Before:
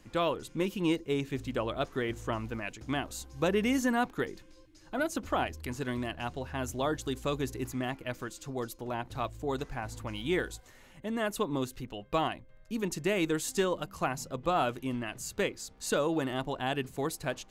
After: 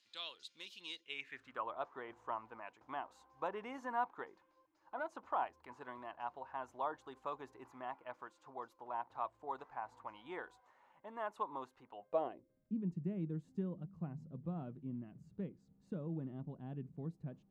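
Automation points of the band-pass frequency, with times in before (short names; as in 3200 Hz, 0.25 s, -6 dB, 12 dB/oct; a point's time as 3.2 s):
band-pass, Q 3.6
0.92 s 4000 Hz
1.68 s 940 Hz
11.92 s 940 Hz
12.82 s 170 Hz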